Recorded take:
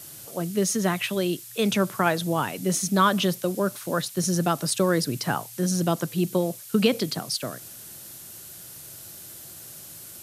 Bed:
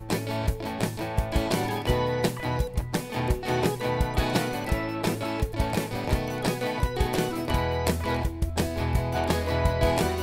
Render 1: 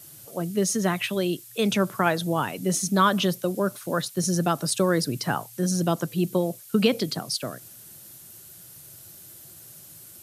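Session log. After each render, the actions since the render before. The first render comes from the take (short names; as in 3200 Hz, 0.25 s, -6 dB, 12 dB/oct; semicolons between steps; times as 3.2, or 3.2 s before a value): denoiser 6 dB, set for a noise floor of -43 dBFS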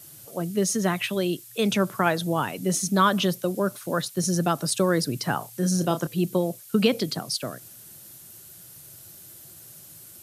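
5.38–6.07 doubler 32 ms -9 dB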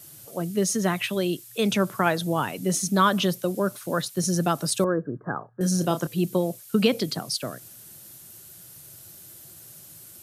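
4.84–5.61 rippled Chebyshev low-pass 1700 Hz, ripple 6 dB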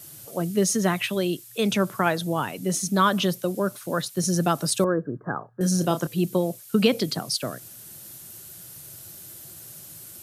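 vocal rider within 4 dB 2 s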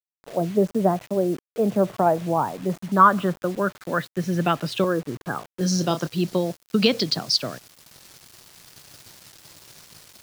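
low-pass sweep 710 Hz -> 4900 Hz, 1.98–5.72; bit-crush 7-bit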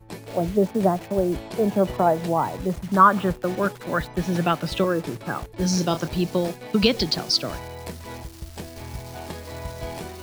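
add bed -10 dB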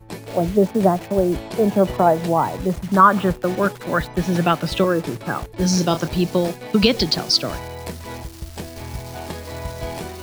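gain +4 dB; limiter -2 dBFS, peak gain reduction 3 dB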